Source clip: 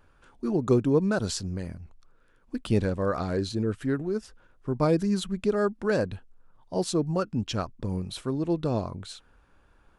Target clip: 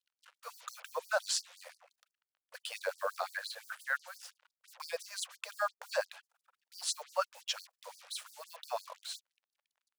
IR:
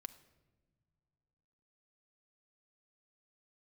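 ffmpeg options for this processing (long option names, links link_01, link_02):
-filter_complex "[0:a]asettb=1/sr,asplit=3[link_01][link_02][link_03];[link_01]atrim=end=3.264[link_04];[link_02]atrim=start=3.26:end=4.16,asetpts=PTS-STARTPTS,afade=type=in:duration=0.004:curve=qsin,afade=type=out:start_time=0.896:duration=0.004:curve=qsin,equalizer=frequency=100:width_type=o:width=0.67:gain=6,equalizer=frequency=250:width_type=o:width=0.67:gain=-9,equalizer=frequency=1600:width_type=o:width=0.67:gain=10,equalizer=frequency=6300:width_type=o:width=0.67:gain=-11[link_05];[link_03]atrim=start=4.156[link_06];[link_04][link_05]acrossfade=duration=0.004:curve1=hsin:curve2=qsin[link_07];[link_07][link_06]acrossfade=duration=0.004:curve1=qsin:curve2=hsin,acrusher=bits=7:mix=0:aa=0.5,afftfilt=real='re*gte(b*sr/1024,470*pow(4500/470,0.5+0.5*sin(2*PI*5.8*pts/sr)))':imag='im*gte(b*sr/1024,470*pow(4500/470,0.5+0.5*sin(2*PI*5.8*pts/sr)))':win_size=1024:overlap=0.75"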